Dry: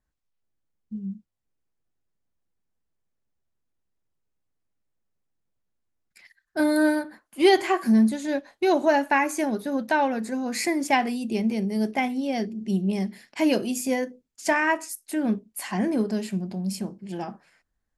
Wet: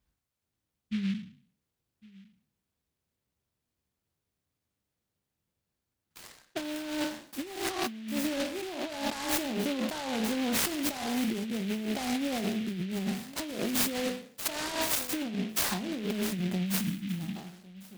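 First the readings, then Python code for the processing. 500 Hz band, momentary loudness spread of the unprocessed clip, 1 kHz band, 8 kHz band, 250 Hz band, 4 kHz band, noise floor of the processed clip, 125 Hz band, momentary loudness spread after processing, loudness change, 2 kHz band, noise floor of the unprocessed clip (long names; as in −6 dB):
−10.5 dB, 14 LU, −11.5 dB, +1.0 dB, −7.5 dB, +0.5 dB, below −85 dBFS, can't be measured, 10 LU, −7.0 dB, −9.0 dB, −79 dBFS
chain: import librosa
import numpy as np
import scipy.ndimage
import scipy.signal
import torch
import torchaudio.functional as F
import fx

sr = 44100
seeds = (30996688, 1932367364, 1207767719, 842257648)

p1 = fx.spec_trails(x, sr, decay_s=0.51)
p2 = scipy.signal.sosfilt(scipy.signal.butter(2, 66.0, 'highpass', fs=sr, output='sos'), p1)
p3 = fx.low_shelf(p2, sr, hz=97.0, db=10.5)
p4 = p3 + fx.echo_single(p3, sr, ms=1104, db=-23.0, dry=0)
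p5 = fx.over_compress(p4, sr, threshold_db=-28.0, ratio=-1.0)
p6 = fx.high_shelf(p5, sr, hz=9000.0, db=10.0)
p7 = fx.spec_box(p6, sr, start_s=16.81, length_s=0.55, low_hz=320.0, high_hz=5000.0, gain_db=-22)
p8 = fx.noise_mod_delay(p7, sr, seeds[0], noise_hz=2500.0, depth_ms=0.12)
y = F.gain(torch.from_numpy(p8), -5.0).numpy()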